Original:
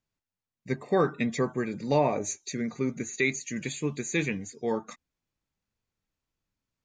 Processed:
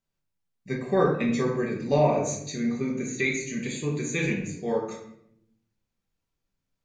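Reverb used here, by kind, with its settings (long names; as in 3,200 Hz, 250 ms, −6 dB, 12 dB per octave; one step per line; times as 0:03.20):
rectangular room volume 160 cubic metres, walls mixed, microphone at 1.2 metres
level −2.5 dB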